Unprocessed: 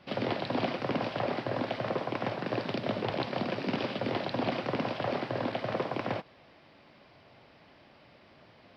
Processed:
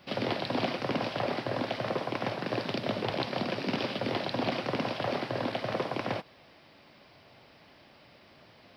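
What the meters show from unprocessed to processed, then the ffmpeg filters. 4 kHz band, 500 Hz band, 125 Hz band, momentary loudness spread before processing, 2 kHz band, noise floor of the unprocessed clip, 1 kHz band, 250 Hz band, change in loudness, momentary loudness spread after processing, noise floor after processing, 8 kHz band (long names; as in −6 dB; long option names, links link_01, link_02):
+3.5 dB, 0.0 dB, 0.0 dB, 2 LU, +1.5 dB, −59 dBFS, +0.5 dB, 0.0 dB, +0.5 dB, 2 LU, −58 dBFS, can't be measured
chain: -af "aemphasis=mode=production:type=50kf"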